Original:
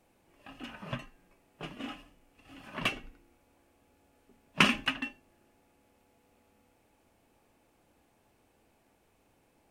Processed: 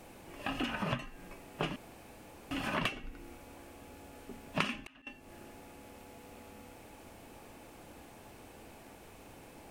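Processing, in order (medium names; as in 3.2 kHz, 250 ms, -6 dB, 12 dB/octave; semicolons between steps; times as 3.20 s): compression 10:1, threshold -47 dBFS, peak gain reduction 28.5 dB; 1.76–2.51 s: room tone; 4.61–5.07 s: slow attack 408 ms; trim +15.5 dB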